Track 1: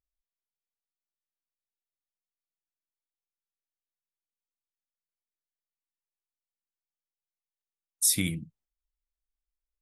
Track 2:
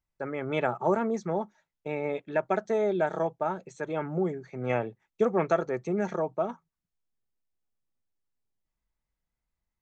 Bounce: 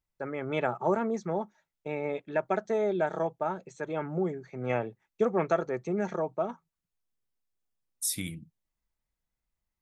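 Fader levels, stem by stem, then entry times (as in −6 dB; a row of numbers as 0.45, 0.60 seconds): −7.0, −1.5 decibels; 0.00, 0.00 seconds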